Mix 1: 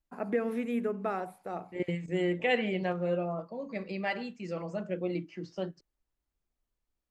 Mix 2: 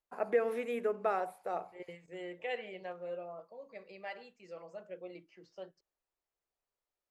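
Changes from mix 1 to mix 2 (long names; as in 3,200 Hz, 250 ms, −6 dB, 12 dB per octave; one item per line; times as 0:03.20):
second voice −11.5 dB
master: add low shelf with overshoot 350 Hz −9.5 dB, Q 1.5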